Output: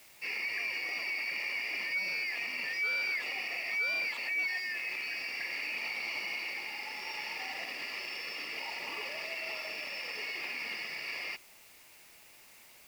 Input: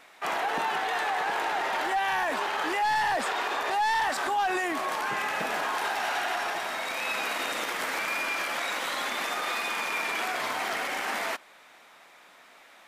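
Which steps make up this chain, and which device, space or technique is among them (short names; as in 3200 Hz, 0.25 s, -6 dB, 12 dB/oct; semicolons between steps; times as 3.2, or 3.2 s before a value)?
split-band scrambled radio (four-band scrambler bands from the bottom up 3142; BPF 330–3100 Hz; white noise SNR 21 dB); gain -5 dB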